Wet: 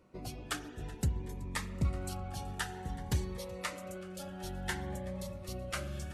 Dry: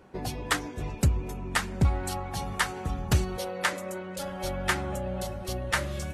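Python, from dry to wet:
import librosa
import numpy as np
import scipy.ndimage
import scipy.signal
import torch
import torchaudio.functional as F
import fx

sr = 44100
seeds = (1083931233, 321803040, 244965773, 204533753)

y = fx.echo_feedback(x, sr, ms=377, feedback_pct=55, wet_db=-20.5)
y = fx.rev_spring(y, sr, rt60_s=1.6, pass_ms=(43,), chirp_ms=30, drr_db=13.5)
y = fx.notch_cascade(y, sr, direction='rising', hz=0.55)
y = y * 10.0 ** (-8.5 / 20.0)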